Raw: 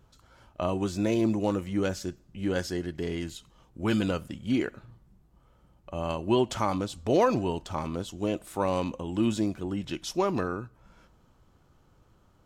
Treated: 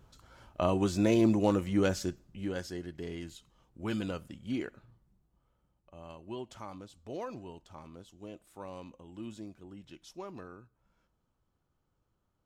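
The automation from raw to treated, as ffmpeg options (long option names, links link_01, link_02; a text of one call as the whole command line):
ffmpeg -i in.wav -af "volume=0.5dB,afade=type=out:start_time=2.04:duration=0.49:silence=0.375837,afade=type=out:start_time=4.59:duration=1.36:silence=0.354813" out.wav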